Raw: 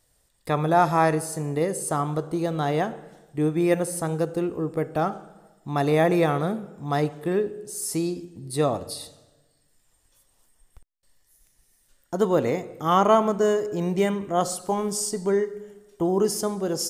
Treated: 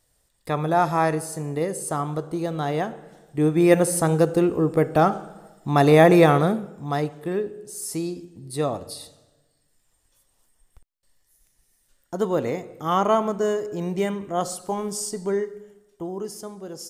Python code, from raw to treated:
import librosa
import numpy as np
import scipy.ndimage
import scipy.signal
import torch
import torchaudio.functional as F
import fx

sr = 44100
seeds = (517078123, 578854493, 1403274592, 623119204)

y = fx.gain(x, sr, db=fx.line((2.98, -1.0), (3.84, 6.5), (6.35, 6.5), (7.07, -2.0), (15.46, -2.0), (16.21, -10.0)))